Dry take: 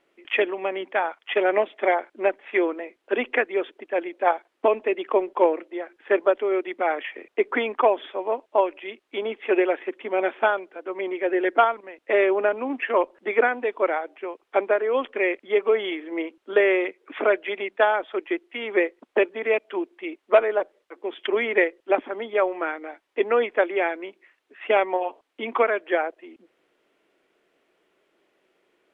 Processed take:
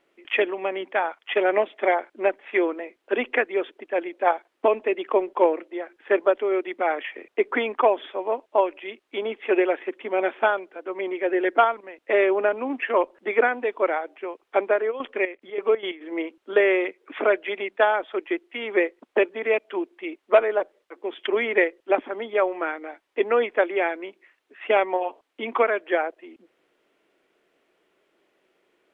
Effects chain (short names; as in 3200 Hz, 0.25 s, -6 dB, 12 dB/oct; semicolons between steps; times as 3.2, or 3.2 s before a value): 14.9–16 step gate "xx..x.xx.x..x" 181 bpm -12 dB